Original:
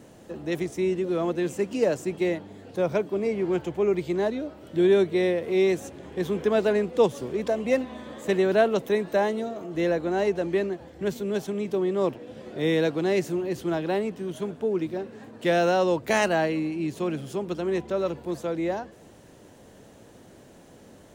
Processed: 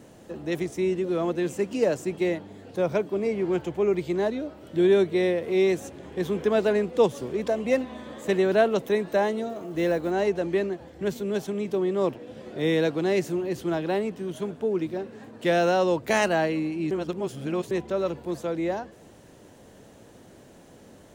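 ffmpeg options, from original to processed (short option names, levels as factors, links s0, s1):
-filter_complex "[0:a]asettb=1/sr,asplit=3[s0][s1][s2];[s0]atrim=end=9.494[s3];[s1]atrim=start=9.49:end=10.11,asetpts=PTS-STARTPTS,afade=t=in:d=0.004:c=qsin,afade=t=out:st=0.616:d=0.004:c=qsin,acrusher=bits=8:mode=log:mix=0:aa=0.000001[s4];[s2]atrim=start=10.106[s5];[s3][s4]acrossfade=d=0.004:c1=hsin:c2=qsin[s6];[s6][s5]acrossfade=d=0.004:c1=qsin:c2=hsin,asplit=3[s7][s8][s9];[s7]atrim=end=16.912[s10];[s8]atrim=start=16.908:end=17.712,asetpts=PTS-STARTPTS,areverse[s11];[s9]atrim=start=17.708[s12];[s10][s11]acrossfade=d=0.004:c1=hsin:c2=hsin[s13];[s13][s12]acrossfade=d=0.004:c1=hsin:c2=hsin"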